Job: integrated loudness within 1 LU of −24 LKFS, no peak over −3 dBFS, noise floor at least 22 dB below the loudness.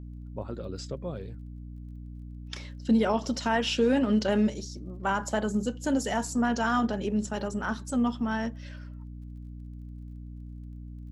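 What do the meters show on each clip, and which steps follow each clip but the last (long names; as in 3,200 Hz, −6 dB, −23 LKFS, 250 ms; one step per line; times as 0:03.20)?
crackle rate 19 per second; mains hum 60 Hz; hum harmonics up to 300 Hz; level of the hum −39 dBFS; integrated loudness −28.5 LKFS; sample peak −13.5 dBFS; target loudness −24.0 LKFS
→ click removal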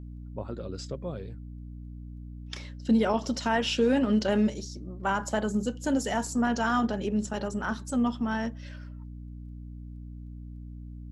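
crackle rate 0 per second; mains hum 60 Hz; hum harmonics up to 300 Hz; level of the hum −39 dBFS
→ hum removal 60 Hz, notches 5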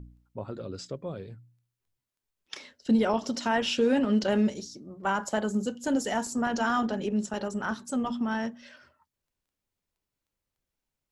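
mains hum none found; integrated loudness −28.5 LKFS; sample peak −14.0 dBFS; target loudness −24.0 LKFS
→ level +4.5 dB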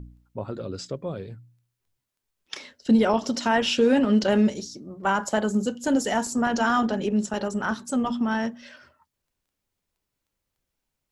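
integrated loudness −24.0 LKFS; sample peak −9.5 dBFS; background noise floor −83 dBFS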